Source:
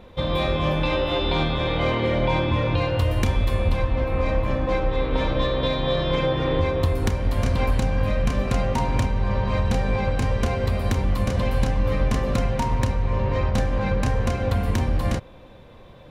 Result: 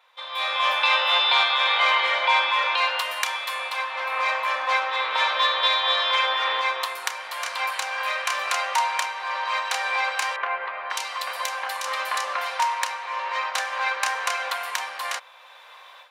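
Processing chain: high-pass 930 Hz 24 dB/octave; level rider gain up to 15 dB; 10.36–12.60 s: bands offset in time lows, highs 540 ms, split 2.4 kHz; trim -4.5 dB

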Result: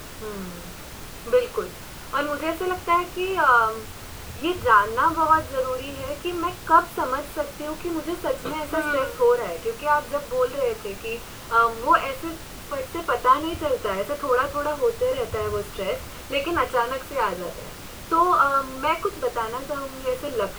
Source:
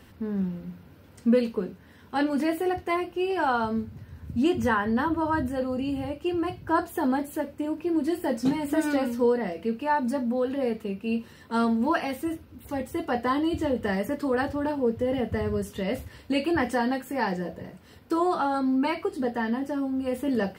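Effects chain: peaking EQ 1.3 kHz +15 dB 1.8 oct; static phaser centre 1.2 kHz, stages 8; added noise pink -39 dBFS

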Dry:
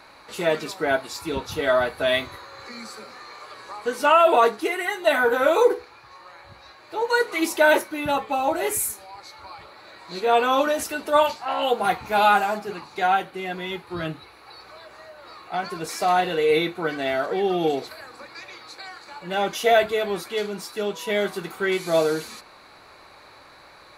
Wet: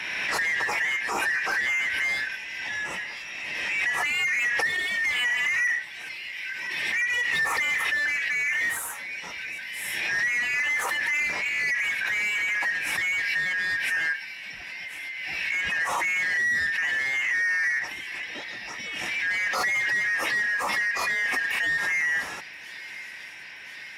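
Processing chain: four frequency bands reordered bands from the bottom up 4123; peaking EQ 970 Hz +10.5 dB 2.3 oct; on a send: feedback echo behind a high-pass 1028 ms, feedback 75%, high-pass 4.7 kHz, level -16 dB; on the sum: saturation -5 dBFS, distortion -20 dB; peak limiter -17 dBFS, peak gain reduction 11.5 dB; overdrive pedal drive 11 dB, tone 3 kHz, clips at -17 dBFS; high-pass 51 Hz; peaking EQ 3.5 kHz -8.5 dB 1 oct; swell ahead of each attack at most 23 dB/s

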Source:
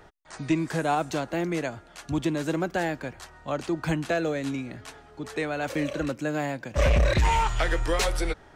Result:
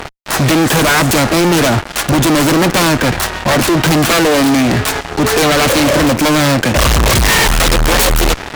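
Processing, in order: self-modulated delay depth 0.57 ms; fuzz box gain 47 dB, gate -49 dBFS; trim +4 dB

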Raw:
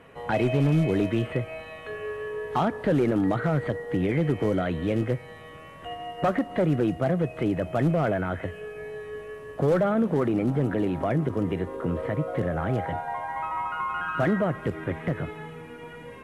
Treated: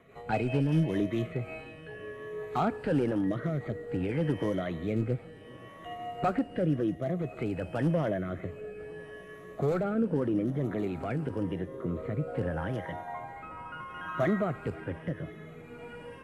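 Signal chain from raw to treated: drifting ripple filter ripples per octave 1.2, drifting +0.84 Hz, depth 8 dB; rotary cabinet horn 5 Hz, later 0.6 Hz, at 0.89 s; modulated delay 526 ms, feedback 75%, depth 162 cents, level -24 dB; trim -4.5 dB

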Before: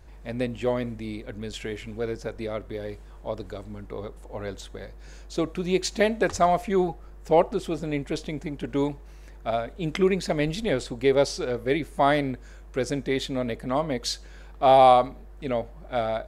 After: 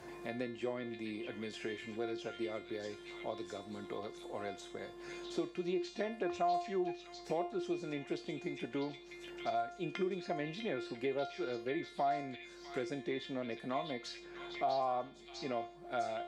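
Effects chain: low-pass that closes with the level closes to 1.6 kHz, closed at -18 dBFS; feedback comb 350 Hz, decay 0.38 s, harmonics all, mix 90%; in parallel at +1.5 dB: peak limiter -30 dBFS, peak gain reduction 11 dB; on the sum: high-pass 140 Hz 12 dB/octave; on a send: repeats whose band climbs or falls 649 ms, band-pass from 3.2 kHz, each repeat 0.7 oct, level -2 dB; on the sum: three bands compressed up and down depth 70%; trim -3.5 dB

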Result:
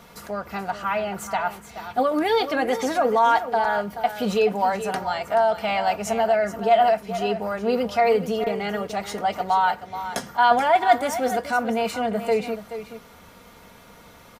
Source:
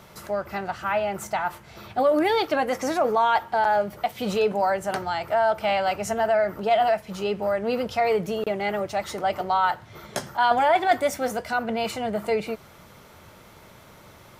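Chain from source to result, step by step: comb 4.2 ms, depth 50%; delay 429 ms -11.5 dB

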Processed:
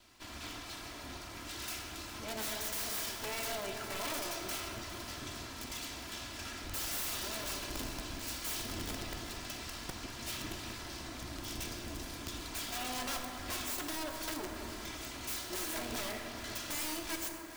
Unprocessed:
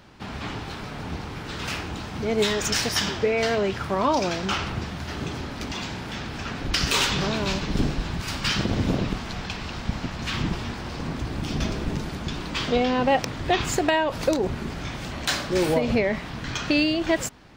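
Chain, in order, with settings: comb filter that takes the minimum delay 3 ms; pre-emphasis filter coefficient 0.8; band-stop 410 Hz, Q 12; in parallel at +1.5 dB: compression 6:1, threshold -42 dBFS, peak gain reduction 15.5 dB; on the sum: integer overflow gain 26.5 dB; echo whose repeats swap between lows and highs 205 ms, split 990 Hz, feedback 62%, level -11 dB; on a send at -3 dB: reverberation RT60 3.7 s, pre-delay 7 ms; on the sum: trim -6.5 dB

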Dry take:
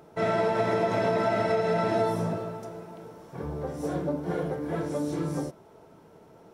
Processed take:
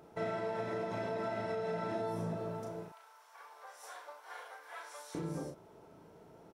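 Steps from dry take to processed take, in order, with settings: 2.88–5.15 s: high-pass 940 Hz 24 dB/octave; compression 6:1, threshold -31 dBFS, peak gain reduction 10 dB; doubling 36 ms -5 dB; trim -5.5 dB

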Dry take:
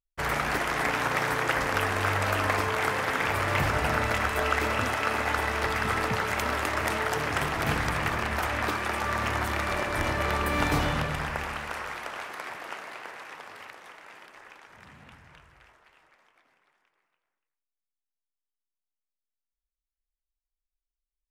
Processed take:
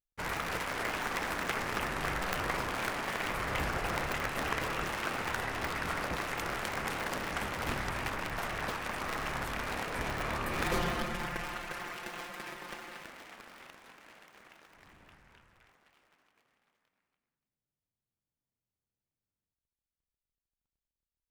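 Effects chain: cycle switcher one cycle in 2, inverted; 10.64–13.03 s: comb 5.7 ms, depth 81%; trim -7.5 dB

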